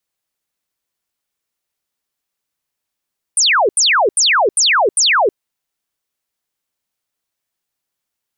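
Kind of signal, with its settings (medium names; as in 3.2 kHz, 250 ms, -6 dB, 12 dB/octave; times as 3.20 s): burst of laser zaps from 9.8 kHz, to 360 Hz, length 0.32 s sine, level -9.5 dB, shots 5, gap 0.08 s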